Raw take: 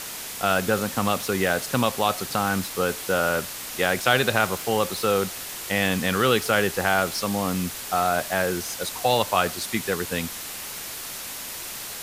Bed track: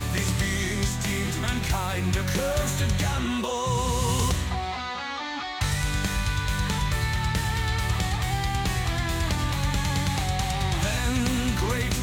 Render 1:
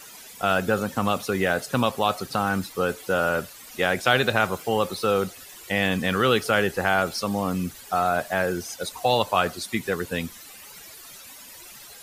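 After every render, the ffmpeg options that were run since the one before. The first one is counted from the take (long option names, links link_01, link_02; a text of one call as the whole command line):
ffmpeg -i in.wav -af "afftdn=noise_reduction=14:noise_floor=-35" out.wav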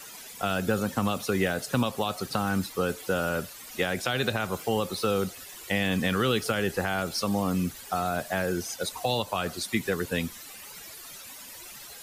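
ffmpeg -i in.wav -filter_complex "[0:a]alimiter=limit=-10dB:level=0:latency=1:release=183,acrossover=split=350|3000[link_01][link_02][link_03];[link_02]acompressor=threshold=-27dB:ratio=6[link_04];[link_01][link_04][link_03]amix=inputs=3:normalize=0" out.wav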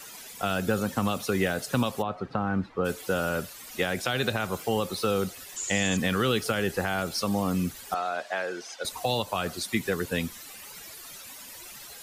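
ffmpeg -i in.wav -filter_complex "[0:a]asplit=3[link_01][link_02][link_03];[link_01]afade=type=out:start_time=2.01:duration=0.02[link_04];[link_02]lowpass=1600,afade=type=in:start_time=2.01:duration=0.02,afade=type=out:start_time=2.84:duration=0.02[link_05];[link_03]afade=type=in:start_time=2.84:duration=0.02[link_06];[link_04][link_05][link_06]amix=inputs=3:normalize=0,asettb=1/sr,asplit=3[link_07][link_08][link_09];[link_07]atrim=end=5.564[link_10];[link_08]atrim=start=5.56:end=5.97,asetpts=PTS-STARTPTS,afade=type=in:duration=0.004:curve=qsin,afade=type=out:start_time=0.406:duration=0.004:curve=qsin,lowpass=frequency=7000:width_type=q:width=14[link_11];[link_09]atrim=start=5.966[link_12];[link_10][link_11]acrossfade=duration=0.004:curve1=hsin:curve2=qsin[link_13];[link_13][link_12]acrossfade=duration=0.004:curve1=qsin:curve2=hsin,asettb=1/sr,asplit=3[link_14][link_15][link_16];[link_14]atrim=end=7.944[link_17];[link_15]atrim=start=7.94:end=8.85,asetpts=PTS-STARTPTS,afade=type=in:duration=0.004:curve=qsin,afade=type=out:start_time=0.906:duration=0.004:curve=qsin,highpass=490,lowpass=4700[link_18];[link_16]atrim=start=8.846[link_19];[link_17][link_18]acrossfade=duration=0.004:curve1=hsin:curve2=qsin[link_20];[link_20][link_19]acrossfade=duration=0.004:curve1=qsin:curve2=hsin" out.wav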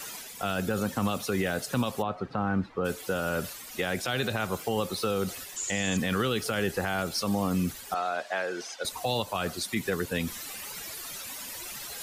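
ffmpeg -i in.wav -af "areverse,acompressor=mode=upward:threshold=-32dB:ratio=2.5,areverse,alimiter=limit=-18dB:level=0:latency=1:release=29" out.wav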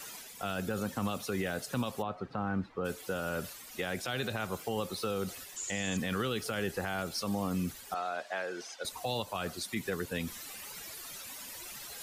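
ffmpeg -i in.wav -af "volume=-5.5dB" out.wav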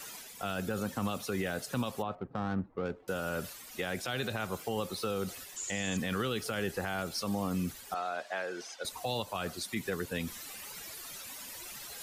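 ffmpeg -i in.wav -filter_complex "[0:a]asettb=1/sr,asplit=3[link_01][link_02][link_03];[link_01]atrim=end=2.154[link_04];[link_02]atrim=start=2.15:end=3.08,asetpts=PTS-STARTPTS,afade=type=in:duration=0.004:curve=qsin,afade=type=out:start_time=0.926:duration=0.004:curve=qsin,adynamicsmooth=sensitivity=4.5:basefreq=610[link_05];[link_03]atrim=start=3.076[link_06];[link_04][link_05]acrossfade=duration=0.004:curve1=hsin:curve2=qsin[link_07];[link_07][link_06]acrossfade=duration=0.004:curve1=qsin:curve2=hsin" out.wav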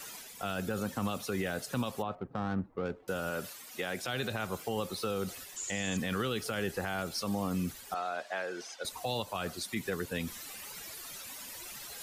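ffmpeg -i in.wav -filter_complex "[0:a]asettb=1/sr,asplit=3[link_01][link_02][link_03];[link_01]atrim=end=3.304[link_04];[link_02]atrim=start=3.3:end=4.02,asetpts=PTS-STARTPTS,afade=type=in:duration=0.004:curve=qsin,afade=type=out:start_time=0.716:duration=0.004:curve=qsin,highpass=frequency=180:poles=1[link_05];[link_03]atrim=start=4.016[link_06];[link_04][link_05]acrossfade=duration=0.004:curve1=hsin:curve2=qsin[link_07];[link_07][link_06]acrossfade=duration=0.004:curve1=qsin:curve2=hsin" out.wav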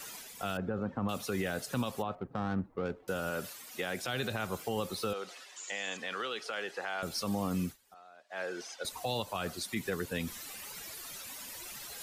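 ffmpeg -i in.wav -filter_complex "[0:a]asettb=1/sr,asplit=3[link_01][link_02][link_03];[link_01]atrim=end=0.574[link_04];[link_02]atrim=start=0.57:end=1.09,asetpts=PTS-STARTPTS,afade=type=in:duration=0.004:curve=qsin,afade=type=out:start_time=0.516:duration=0.004:curve=qsin,lowpass=1300[link_05];[link_03]atrim=start=1.086[link_06];[link_04][link_05]acrossfade=duration=0.004:curve1=hsin:curve2=qsin[link_07];[link_07][link_06]acrossfade=duration=0.004:curve1=qsin:curve2=hsin,asettb=1/sr,asplit=3[link_08][link_09][link_10];[link_08]atrim=end=5.134[link_11];[link_09]atrim=start=5.13:end=7.03,asetpts=PTS-STARTPTS,afade=type=in:duration=0.004:curve=qsin,afade=type=out:start_time=1.896:duration=0.004:curve=qsin,highpass=540,lowpass=5300[link_12];[link_10]atrim=start=7.026[link_13];[link_11][link_12]acrossfade=duration=0.004:curve1=hsin:curve2=qsin[link_14];[link_14][link_13]acrossfade=duration=0.004:curve1=qsin:curve2=hsin,asplit=3[link_15][link_16][link_17];[link_15]atrim=end=7.77,asetpts=PTS-STARTPTS,afade=type=out:start_time=7.64:duration=0.13:silence=0.1[link_18];[link_16]atrim=start=7.77:end=8.29,asetpts=PTS-STARTPTS,volume=-20dB[link_19];[link_17]atrim=start=8.29,asetpts=PTS-STARTPTS,afade=type=in:duration=0.13:silence=0.1[link_20];[link_18][link_19][link_20]concat=n=3:v=0:a=1" out.wav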